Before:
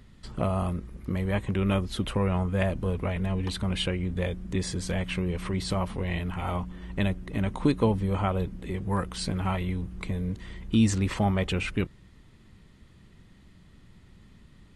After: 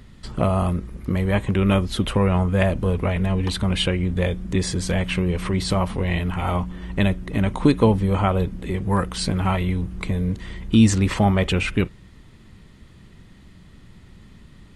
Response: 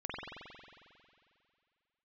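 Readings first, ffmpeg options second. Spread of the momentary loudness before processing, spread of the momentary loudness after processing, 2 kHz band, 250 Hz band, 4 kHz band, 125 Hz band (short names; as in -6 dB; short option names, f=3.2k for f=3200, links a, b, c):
8 LU, 7 LU, +7.0 dB, +7.0 dB, +7.0 dB, +7.0 dB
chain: -filter_complex "[0:a]asplit=2[a][b];[1:a]atrim=start_sample=2205,atrim=end_sample=3969[c];[b][c]afir=irnorm=-1:irlink=0,volume=-19.5dB[d];[a][d]amix=inputs=2:normalize=0,volume=6.5dB"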